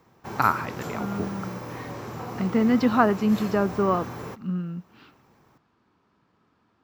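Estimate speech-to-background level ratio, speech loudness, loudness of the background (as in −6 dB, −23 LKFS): 11.0 dB, −25.0 LKFS, −36.0 LKFS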